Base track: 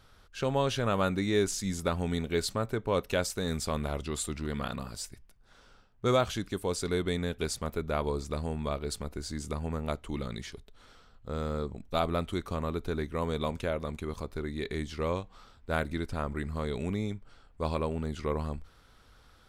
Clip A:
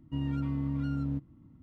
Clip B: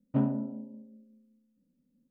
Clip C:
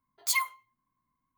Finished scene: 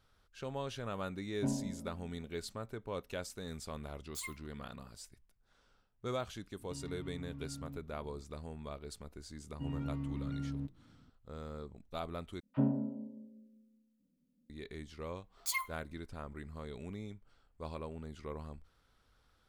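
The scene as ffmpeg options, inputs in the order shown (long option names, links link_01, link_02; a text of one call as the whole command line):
ffmpeg -i bed.wav -i cue0.wav -i cue1.wav -i cue2.wav -filter_complex "[2:a]asplit=2[link_01][link_02];[3:a]asplit=2[link_03][link_04];[1:a]asplit=2[link_05][link_06];[0:a]volume=-12dB[link_07];[link_01]asuperstop=centerf=1300:order=4:qfactor=3.5[link_08];[link_03]highpass=1200[link_09];[link_05]acompressor=threshold=-41dB:ratio=6:attack=3.2:release=140:knee=1:detection=peak[link_10];[link_02]acrossover=split=1100[link_11][link_12];[link_11]adelay=30[link_13];[link_13][link_12]amix=inputs=2:normalize=0[link_14];[link_07]asplit=2[link_15][link_16];[link_15]atrim=end=12.404[link_17];[link_14]atrim=end=2.1,asetpts=PTS-STARTPTS,volume=-3.5dB[link_18];[link_16]atrim=start=14.496[link_19];[link_08]atrim=end=2.1,asetpts=PTS-STARTPTS,volume=-8dB,afade=type=in:duration=0.004:curve=hsin,afade=type=out:start_time=2.096:duration=0.004:curve=hsin,adelay=1280[link_20];[link_09]atrim=end=1.37,asetpts=PTS-STARTPTS,volume=-17dB,afade=type=in:duration=0.004:curve=hsin,afade=type=out:start_time=1.366:duration=0.004:curve=hsin,adelay=3880[link_21];[link_10]atrim=end=1.62,asetpts=PTS-STARTPTS,volume=-3dB,afade=type=in:duration=0.004:curve=hsin,afade=type=out:start_time=1.616:duration=0.004:curve=hsin,adelay=6590[link_22];[link_06]atrim=end=1.62,asetpts=PTS-STARTPTS,volume=-7dB,afade=type=in:duration=0.004:curve=hsin,afade=type=out:start_time=1.616:duration=0.004:curve=hsin,adelay=9480[link_23];[link_04]atrim=end=1.37,asetpts=PTS-STARTPTS,volume=-8.5dB,afade=type=in:duration=0.004:curve=hsin,afade=type=out:start_time=1.366:duration=0.004:curve=hsin,adelay=15190[link_24];[link_17][link_18]acrossfade=duration=0.004:curve1=hsin:curve2=hsin[link_25];[link_25][link_19]acrossfade=duration=0.004:curve1=hsin:curve2=hsin[link_26];[link_26][link_20][link_21][link_22][link_23][link_24]amix=inputs=6:normalize=0" out.wav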